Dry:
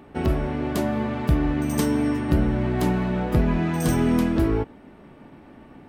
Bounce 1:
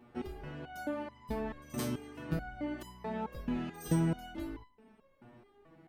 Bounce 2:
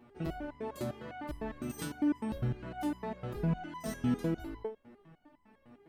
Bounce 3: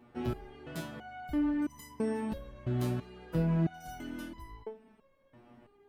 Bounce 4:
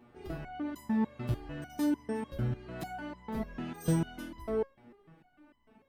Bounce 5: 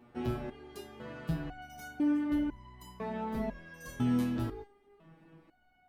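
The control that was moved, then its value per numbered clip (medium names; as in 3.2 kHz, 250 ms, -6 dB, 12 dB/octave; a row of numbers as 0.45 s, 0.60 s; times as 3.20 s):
resonator arpeggio, rate: 4.6 Hz, 9.9 Hz, 3 Hz, 6.7 Hz, 2 Hz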